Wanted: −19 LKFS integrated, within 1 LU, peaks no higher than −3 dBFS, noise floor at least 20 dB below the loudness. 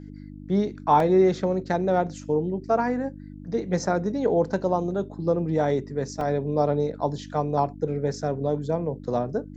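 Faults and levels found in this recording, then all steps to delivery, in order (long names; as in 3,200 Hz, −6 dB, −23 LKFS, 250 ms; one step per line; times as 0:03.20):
number of dropouts 2; longest dropout 2.4 ms; mains hum 50 Hz; hum harmonics up to 300 Hz; level of the hum −38 dBFS; integrated loudness −25.0 LKFS; sample peak −7.0 dBFS; target loudness −19.0 LKFS
→ repair the gap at 0:01.00/0:06.21, 2.4 ms
hum removal 50 Hz, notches 6
level +6 dB
brickwall limiter −3 dBFS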